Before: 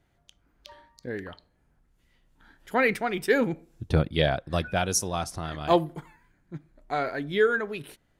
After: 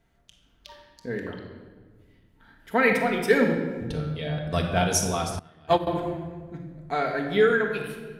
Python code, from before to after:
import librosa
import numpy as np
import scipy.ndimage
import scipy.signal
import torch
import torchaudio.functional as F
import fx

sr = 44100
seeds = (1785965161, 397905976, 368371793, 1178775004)

y = fx.peak_eq(x, sr, hz=6900.0, db=-6.0, octaves=0.9, at=(1.29, 2.75))
y = fx.comb_fb(y, sr, f0_hz=150.0, decay_s=0.4, harmonics='all', damping=0.0, mix_pct=90, at=(3.91, 4.37), fade=0.02)
y = fx.room_shoebox(y, sr, seeds[0], volume_m3=1500.0, walls='mixed', distance_m=1.6)
y = fx.upward_expand(y, sr, threshold_db=-30.0, expansion=2.5, at=(5.39, 5.87))